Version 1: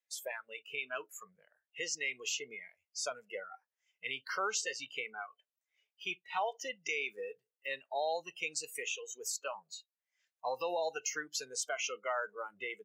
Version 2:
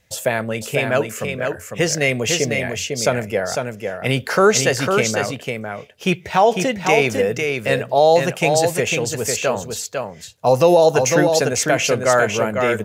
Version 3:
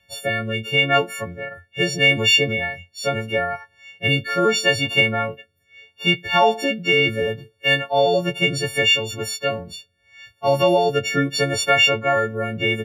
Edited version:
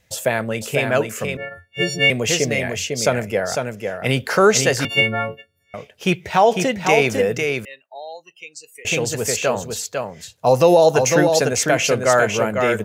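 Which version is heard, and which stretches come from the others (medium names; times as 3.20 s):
2
1.37–2.10 s: from 3
4.85–5.74 s: from 3
7.65–8.85 s: from 1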